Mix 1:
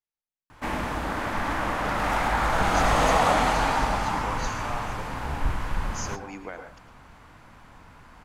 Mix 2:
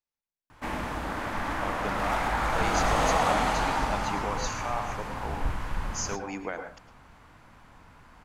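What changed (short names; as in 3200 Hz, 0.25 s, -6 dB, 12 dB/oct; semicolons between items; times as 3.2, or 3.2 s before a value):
speech +3.5 dB; background -3.5 dB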